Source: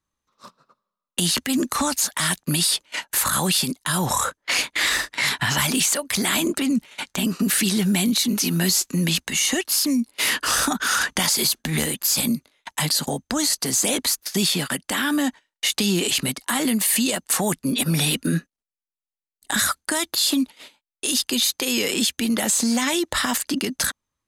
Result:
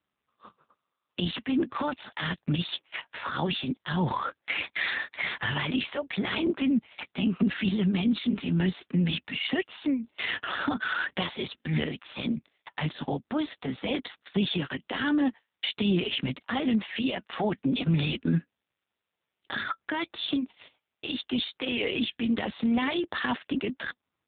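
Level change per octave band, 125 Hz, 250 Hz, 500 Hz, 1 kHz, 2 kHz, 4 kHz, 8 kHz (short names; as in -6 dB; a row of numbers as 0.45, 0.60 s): -3.0 dB, -4.0 dB, -4.5 dB, -6.5 dB, -6.5 dB, -10.5 dB, under -40 dB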